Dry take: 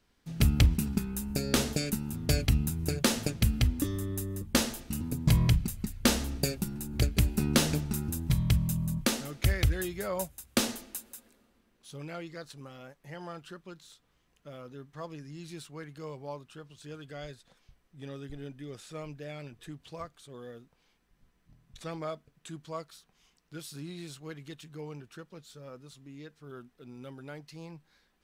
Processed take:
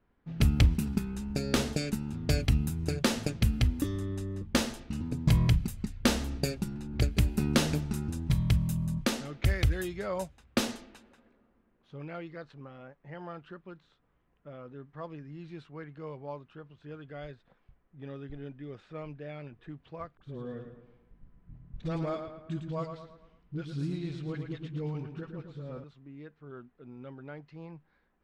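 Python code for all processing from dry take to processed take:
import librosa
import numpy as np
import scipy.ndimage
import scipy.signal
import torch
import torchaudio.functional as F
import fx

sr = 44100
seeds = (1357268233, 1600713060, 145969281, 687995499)

y = fx.chain(x, sr, fx.low_shelf(hz=280.0, db=12.0),
    fx.dispersion(late='highs', ms=45.0, hz=540.0),
    fx.echo_feedback(ms=111, feedback_pct=47, wet_db=-7.5), at=(20.17, 25.84))
y = fx.env_lowpass(y, sr, base_hz=1600.0, full_db=-25.5)
y = fx.high_shelf(y, sr, hz=6300.0, db=-8.5)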